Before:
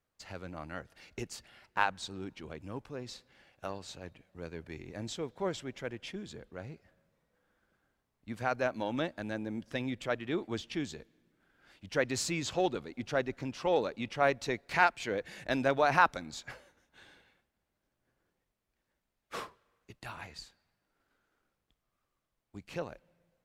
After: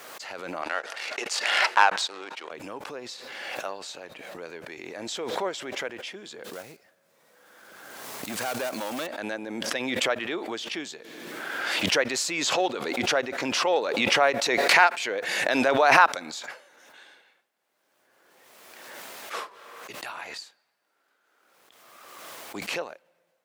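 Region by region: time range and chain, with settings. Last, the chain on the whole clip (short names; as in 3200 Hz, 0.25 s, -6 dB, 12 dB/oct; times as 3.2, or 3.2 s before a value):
0.62–2.51 HPF 500 Hz + sample leveller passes 2 + air absorption 54 m
6.44–9.07 block floating point 5-bit + tone controls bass +5 dB, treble +5 dB + overloaded stage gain 32 dB
whole clip: HPF 470 Hz 12 dB/oct; backwards sustainer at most 27 dB/s; gain +6.5 dB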